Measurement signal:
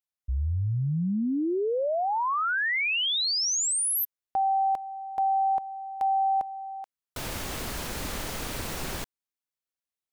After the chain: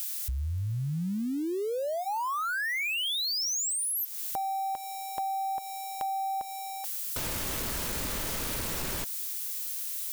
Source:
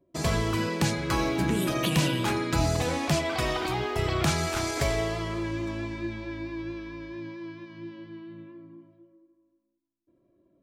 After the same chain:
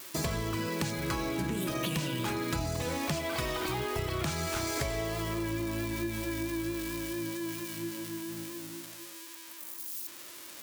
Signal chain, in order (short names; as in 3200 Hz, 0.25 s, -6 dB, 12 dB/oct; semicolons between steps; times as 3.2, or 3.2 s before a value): switching spikes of -30.5 dBFS; notch 750 Hz, Q 12; compressor 6:1, threshold -33 dBFS; gain +3 dB